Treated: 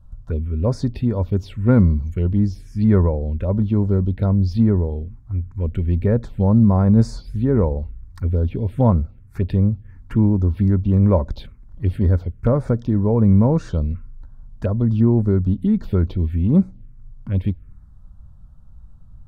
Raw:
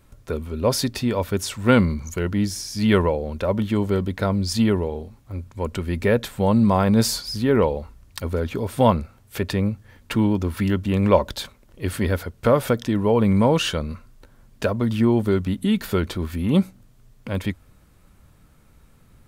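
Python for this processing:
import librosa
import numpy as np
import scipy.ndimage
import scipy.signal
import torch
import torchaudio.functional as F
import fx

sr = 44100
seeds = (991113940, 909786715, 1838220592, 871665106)

y = fx.env_phaser(x, sr, low_hz=360.0, high_hz=3000.0, full_db=-17.5)
y = fx.riaa(y, sr, side='playback')
y = F.gain(torch.from_numpy(y), -5.0).numpy()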